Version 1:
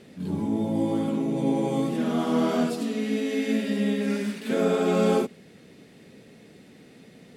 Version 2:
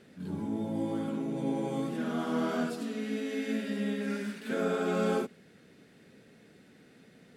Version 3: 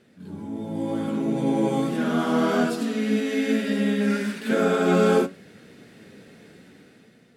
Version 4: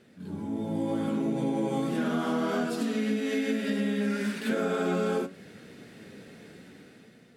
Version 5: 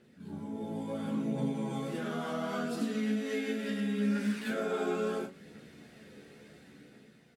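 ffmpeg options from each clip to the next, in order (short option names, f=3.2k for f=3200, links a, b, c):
-af "equalizer=f=1.5k:w=3.5:g=8,volume=-7.5dB"
-af "dynaudnorm=f=260:g=7:m=11dB,flanger=delay=8.2:depth=3.7:regen=73:speed=0.69:shape=triangular,volume=3dB"
-af "acompressor=threshold=-25dB:ratio=6"
-filter_complex "[0:a]aphaser=in_gain=1:out_gain=1:delay=2.7:decay=0.28:speed=0.72:type=triangular,asplit=2[a][b];[b]aecho=0:1:14|38:0.596|0.447[c];[a][c]amix=inputs=2:normalize=0,volume=-7dB"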